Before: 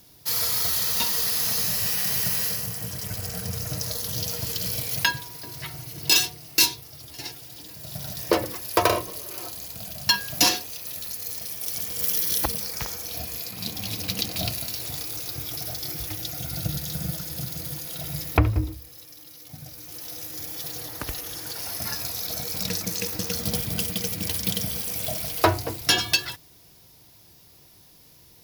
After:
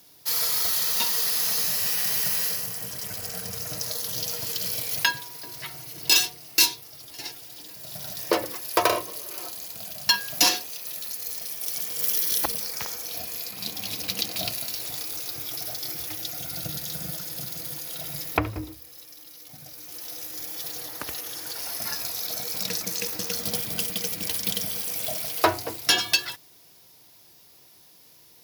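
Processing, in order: high-pass 350 Hz 6 dB/octave

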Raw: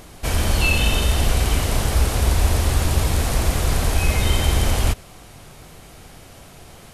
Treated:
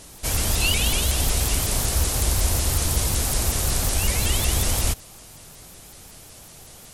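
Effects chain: tone controls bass 0 dB, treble +11 dB; vibrato with a chosen wave saw up 5.4 Hz, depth 250 cents; trim -5 dB

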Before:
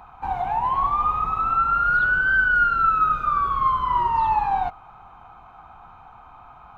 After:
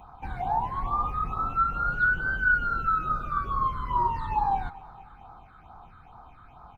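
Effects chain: dynamic bell 3.1 kHz, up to -5 dB, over -35 dBFS, Q 0.87; phase shifter stages 8, 2.3 Hz, lowest notch 770–2700 Hz; on a send: feedback delay 232 ms, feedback 56%, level -20.5 dB

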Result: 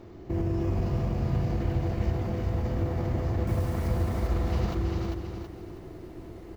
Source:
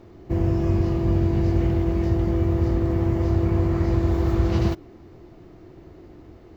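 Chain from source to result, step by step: peak limiter -21 dBFS, peak gain reduction 11 dB; 3.47–3.88 s: word length cut 8-bit, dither none; on a send: delay 396 ms -3.5 dB; on the sum: bit-crushed delay 325 ms, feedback 35%, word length 10-bit, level -6 dB

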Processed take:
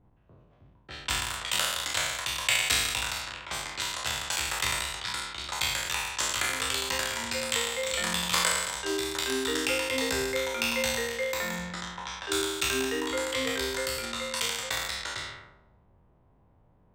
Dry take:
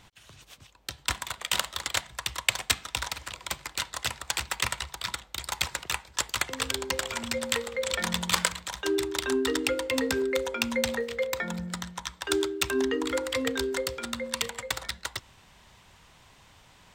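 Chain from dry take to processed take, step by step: spectral sustain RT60 1.38 s; level-controlled noise filter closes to 480 Hz, open at -23.5 dBFS; trim -5 dB

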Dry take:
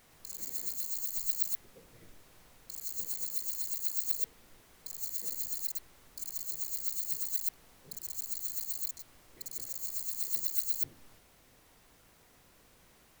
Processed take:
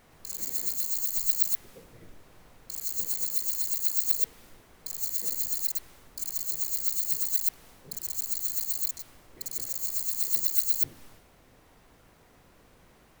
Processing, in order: tape noise reduction on one side only decoder only; trim +6.5 dB

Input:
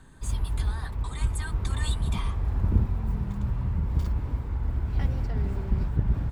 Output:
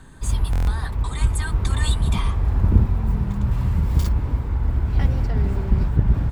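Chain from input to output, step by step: 3.51–4.09 s: treble shelf 3.5 kHz +11 dB; buffer glitch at 0.51 s, samples 1024, times 6; trim +7 dB

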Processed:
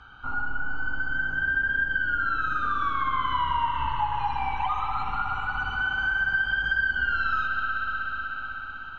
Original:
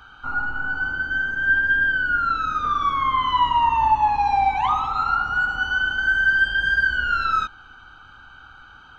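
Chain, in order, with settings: distance through air 100 m; 3.68–5.82 s: phase shifter stages 12, 1.6 Hz, lowest notch 240–1300 Hz; bass shelf 170 Hz +4 dB; thinning echo 181 ms, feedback 70%, level -13 dB; reverberation RT60 5.4 s, pre-delay 59 ms, DRR 2 dB; compression 2.5:1, threshold -21 dBFS, peak gain reduction 6.5 dB; trim -3 dB

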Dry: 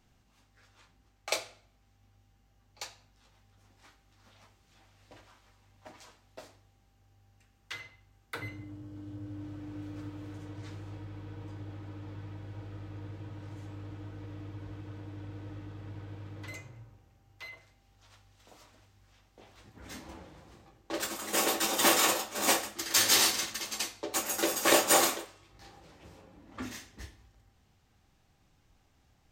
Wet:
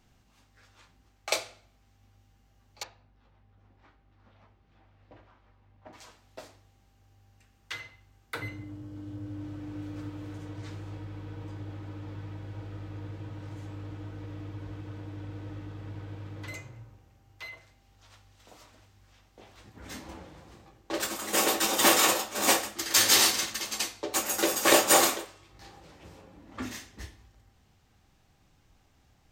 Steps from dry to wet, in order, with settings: 2.83–5.93 s: tape spacing loss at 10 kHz 34 dB; trim +3 dB

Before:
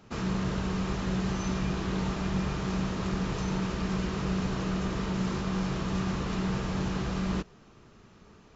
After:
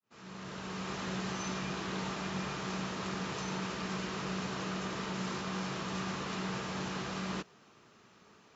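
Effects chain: fade-in on the opening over 1.00 s; high-pass 120 Hz 12 dB/octave; bass shelf 500 Hz -9 dB

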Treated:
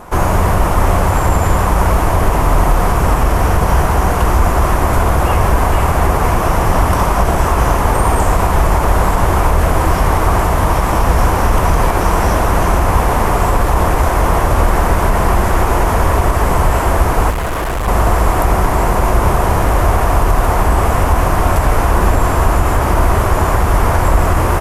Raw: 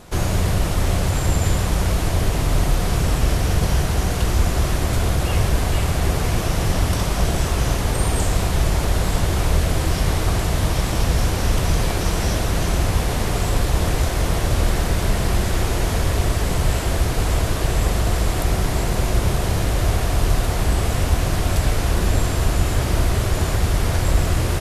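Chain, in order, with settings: graphic EQ 125/1000/4000/8000 Hz -5/+10/-11/-4 dB; 17.30–17.88 s: hard clipper -23 dBFS, distortion -20 dB; loudness maximiser +8.5 dB; trim -1 dB

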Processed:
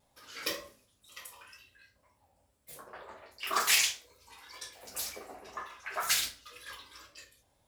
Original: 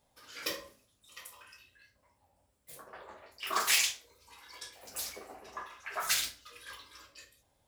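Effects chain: vibrato 2 Hz 54 cents; trim +1.5 dB

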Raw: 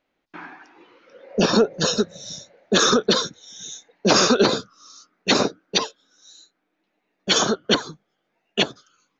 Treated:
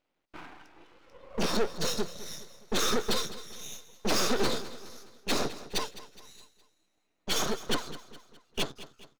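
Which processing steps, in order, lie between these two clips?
single-diode clipper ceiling -18 dBFS; band-stop 1.7 kHz, Q 6.5; half-wave rectifier; on a send: feedback delay 208 ms, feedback 47%, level -15.5 dB; on the sum: trim -2 dB

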